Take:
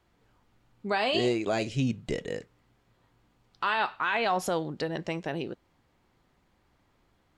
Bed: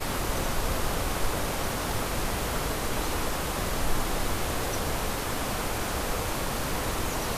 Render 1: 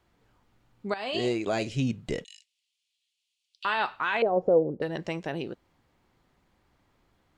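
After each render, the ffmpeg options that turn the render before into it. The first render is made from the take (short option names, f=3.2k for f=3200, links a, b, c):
-filter_complex "[0:a]asettb=1/sr,asplit=3[a][b][c];[a]atrim=end=2.244[d];[b]atrim=start=2.24:end=3.65,asetpts=PTS-STARTPTS,afade=t=in:d=0.004:c=qsin,afade=t=out:st=1.406:d=0.004:c=qsin,asuperpass=centerf=5800:order=12:qfactor=0.68[e];[c]atrim=start=3.646[f];[d][e]acrossfade=d=0.004:c1=hsin:c2=qsin[g];[g][f]acrossfade=d=0.004:c1=qsin:c2=hsin,asettb=1/sr,asplit=3[h][i][j];[h]atrim=end=4.224[k];[i]atrim=start=4.22:end=4.82,asetpts=PTS-STARTPTS,afade=t=in:d=0.004:c=qsin,afade=t=out:st=0.596:d=0.004:c=qsin,lowpass=f=500:t=q:w=3.8[l];[j]atrim=start=4.816[m];[k][l]acrossfade=d=0.004:c1=hsin:c2=qsin[n];[n][m]acrossfade=d=0.004:c1=qsin:c2=hsin,asplit=2[o][p];[o]atrim=end=0.94,asetpts=PTS-STARTPTS,afade=t=out:st=0.936:d=0.004:c=hsin:silence=0.223872[q];[p]atrim=start=0.94,asetpts=PTS-STARTPTS,afade=t=in:d=0.55:c=qsin:silence=0.223872[r];[q][r]concat=n=2:v=0:a=1"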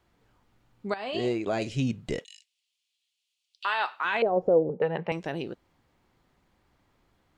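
-filter_complex "[0:a]asettb=1/sr,asplit=3[a][b][c];[a]atrim=end=0.954[d];[b]atrim=start=0.95:end=1.62,asetpts=PTS-STARTPTS,afade=t=in:d=0.004:c=qsin,afade=t=out:st=0.666:d=0.004:c=qsin,highshelf=f=3.1k:g=-7.5[e];[c]atrim=start=1.616[f];[d][e]acrossfade=d=0.004:c1=hsin:c2=qsin[g];[g][f]acrossfade=d=0.004:c1=qsin:c2=hsin,asettb=1/sr,asplit=3[h][i][j];[h]atrim=end=2.194[k];[i]atrim=start=2.19:end=4.05,asetpts=PTS-STARTPTS,afade=t=in:d=0.004:c=qsin,afade=t=out:st=1.856:d=0.004:c=qsin,highpass=520[l];[j]atrim=start=4.046[m];[k][l]acrossfade=d=0.004:c1=hsin:c2=qsin[n];[n][m]acrossfade=d=0.004:c1=qsin:c2=hsin,asettb=1/sr,asplit=3[o][p][q];[o]atrim=end=4.694[r];[p]atrim=start=4.69:end=5.12,asetpts=PTS-STARTPTS,afade=t=in:d=0.004:c=qsin,afade=t=out:st=0.426:d=0.004:c=qsin,highpass=160,equalizer=f=170:t=q:w=4:g=7,equalizer=f=300:t=q:w=4:g=-10,equalizer=f=460:t=q:w=4:g=8,equalizer=f=860:t=q:w=4:g=10,equalizer=f=1.3k:t=q:w=4:g=4,equalizer=f=2.4k:t=q:w=4:g=5,lowpass=f=3k:w=0.5412,lowpass=f=3k:w=1.3066[s];[q]atrim=start=5.116[t];[r][s]acrossfade=d=0.004:c1=hsin:c2=qsin[u];[u][t]acrossfade=d=0.004:c1=qsin:c2=hsin"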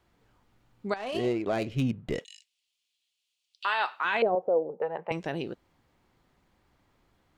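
-filter_complex "[0:a]asettb=1/sr,asplit=3[a][b][c];[a]atrim=end=0.964[d];[b]atrim=start=0.96:end=2.15,asetpts=PTS-STARTPTS,afade=t=in:d=0.004:c=qsin,afade=t=out:st=1.186:d=0.004:c=qsin,adynamicsmooth=sensitivity=6.5:basefreq=1.7k[e];[c]atrim=start=2.146[f];[d][e]acrossfade=d=0.004:c1=hsin:c2=qsin[g];[g][f]acrossfade=d=0.004:c1=qsin:c2=hsin,asettb=1/sr,asplit=3[h][i][j];[h]atrim=end=4.354[k];[i]atrim=start=4.35:end=5.11,asetpts=PTS-STARTPTS,afade=t=in:d=0.004:c=qsin,afade=t=out:st=0.756:d=0.004:c=qsin,bandpass=f=820:t=q:w=1.2[l];[j]atrim=start=5.106[m];[k][l]acrossfade=d=0.004:c1=hsin:c2=qsin[n];[n][m]acrossfade=d=0.004:c1=qsin:c2=hsin"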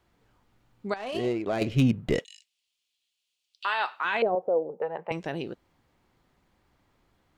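-filter_complex "[0:a]asettb=1/sr,asplit=3[a][b][c];[a]atrim=end=1.614[d];[b]atrim=start=1.61:end=2.21,asetpts=PTS-STARTPTS,afade=t=in:d=0.004:c=qsin,afade=t=out:st=0.596:d=0.004:c=qsin,acontrast=52[e];[c]atrim=start=2.206[f];[d][e]acrossfade=d=0.004:c1=hsin:c2=qsin[g];[g][f]acrossfade=d=0.004:c1=qsin:c2=hsin"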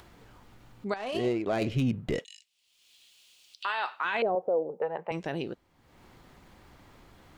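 -af "alimiter=limit=-20dB:level=0:latency=1:release=29,acompressor=mode=upward:threshold=-42dB:ratio=2.5"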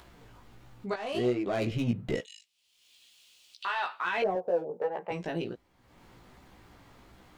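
-filter_complex "[0:a]asplit=2[a][b];[b]volume=27.5dB,asoftclip=hard,volume=-27.5dB,volume=-9dB[c];[a][c]amix=inputs=2:normalize=0,flanger=delay=15.5:depth=2.3:speed=1.4"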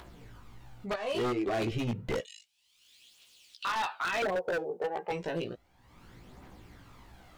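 -af "aphaser=in_gain=1:out_gain=1:delay=2.8:decay=0.44:speed=0.31:type=triangular,aeval=exprs='0.0562*(abs(mod(val(0)/0.0562+3,4)-2)-1)':c=same"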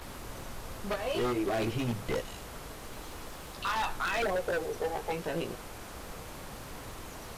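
-filter_complex "[1:a]volume=-14.5dB[a];[0:a][a]amix=inputs=2:normalize=0"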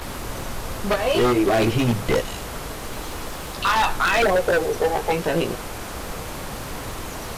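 -af "volume=12dB"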